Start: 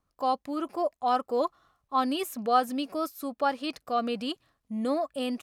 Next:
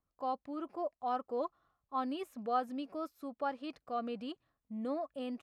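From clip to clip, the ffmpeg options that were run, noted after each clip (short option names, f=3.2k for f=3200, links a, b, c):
-af "lowpass=f=1.8k:p=1,volume=-8.5dB"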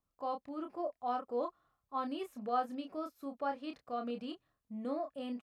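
-filter_complex "[0:a]asplit=2[a][b];[b]adelay=29,volume=-6dB[c];[a][c]amix=inputs=2:normalize=0,volume=-1.5dB"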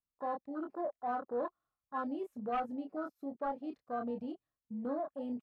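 -af "asoftclip=type=tanh:threshold=-31.5dB,afwtdn=0.00708,volume=2.5dB"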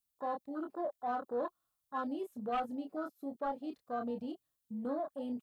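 -af "aexciter=amount=2.6:drive=3.6:freq=3.1k"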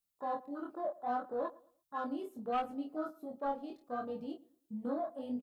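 -filter_complex "[0:a]flanger=delay=18:depth=7.1:speed=0.71,asplit=2[a][b];[b]adelay=112,lowpass=f=1.5k:p=1,volume=-20dB,asplit=2[c][d];[d]adelay=112,lowpass=f=1.5k:p=1,volume=0.32,asplit=2[e][f];[f]adelay=112,lowpass=f=1.5k:p=1,volume=0.32[g];[a][c][e][g]amix=inputs=4:normalize=0,volume=2.5dB"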